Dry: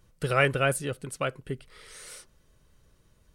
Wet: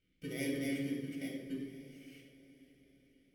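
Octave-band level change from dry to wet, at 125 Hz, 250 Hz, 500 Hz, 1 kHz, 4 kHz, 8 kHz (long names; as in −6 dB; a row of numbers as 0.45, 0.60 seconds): −15.0 dB, +0.5 dB, −15.5 dB, below −30 dB, −12.0 dB, −14.5 dB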